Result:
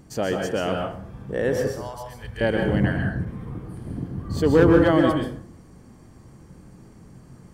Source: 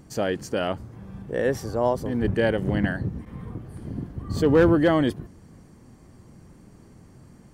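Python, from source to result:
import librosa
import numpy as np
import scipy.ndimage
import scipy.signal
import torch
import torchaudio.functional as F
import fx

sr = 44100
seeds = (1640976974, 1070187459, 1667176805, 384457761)

y = fx.tone_stack(x, sr, knobs='10-0-10', at=(1.69, 2.41))
y = fx.rev_plate(y, sr, seeds[0], rt60_s=0.53, hf_ratio=0.65, predelay_ms=115, drr_db=2.0)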